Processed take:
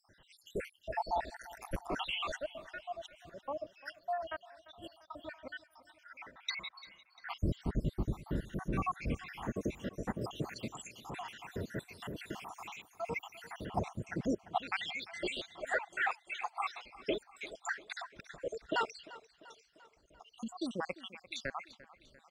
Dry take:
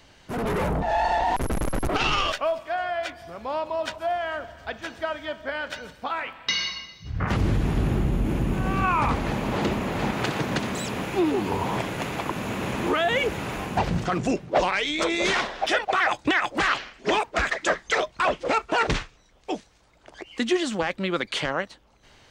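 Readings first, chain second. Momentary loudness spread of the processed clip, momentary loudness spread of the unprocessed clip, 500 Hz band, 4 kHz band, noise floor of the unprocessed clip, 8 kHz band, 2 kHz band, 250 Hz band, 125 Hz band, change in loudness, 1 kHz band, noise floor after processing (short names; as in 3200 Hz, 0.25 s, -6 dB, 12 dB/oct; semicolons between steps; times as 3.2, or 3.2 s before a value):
15 LU, 9 LU, -15.0 dB, -14.5 dB, -56 dBFS, -15.5 dB, -14.0 dB, -14.0 dB, -13.5 dB, -14.0 dB, -14.5 dB, -69 dBFS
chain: random spectral dropouts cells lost 79%; feedback echo 0.346 s, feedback 56%, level -18.5 dB; gain -8 dB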